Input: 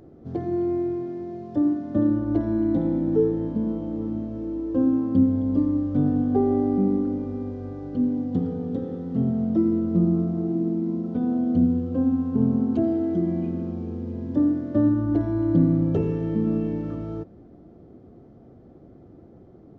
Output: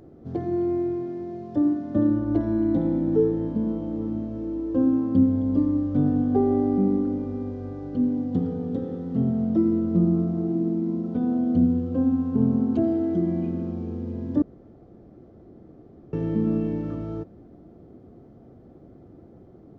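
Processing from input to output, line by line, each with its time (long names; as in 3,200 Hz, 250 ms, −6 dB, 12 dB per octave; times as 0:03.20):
0:14.42–0:16.13: fill with room tone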